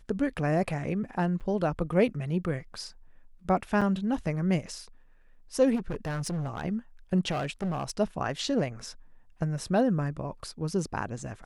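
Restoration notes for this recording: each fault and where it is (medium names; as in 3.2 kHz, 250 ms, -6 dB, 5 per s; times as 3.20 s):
1.40–1.41 s: dropout 7.3 ms
3.81–3.82 s: dropout 6 ms
5.75–6.65 s: clipped -28.5 dBFS
7.30–7.91 s: clipped -27 dBFS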